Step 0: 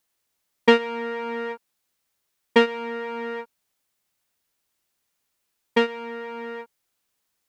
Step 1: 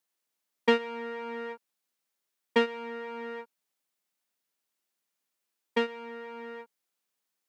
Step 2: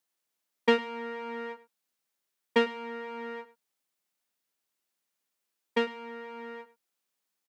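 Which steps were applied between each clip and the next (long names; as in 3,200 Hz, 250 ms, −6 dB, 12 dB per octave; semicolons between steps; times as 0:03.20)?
high-pass filter 160 Hz 24 dB per octave; level −7.5 dB
single-tap delay 102 ms −18.5 dB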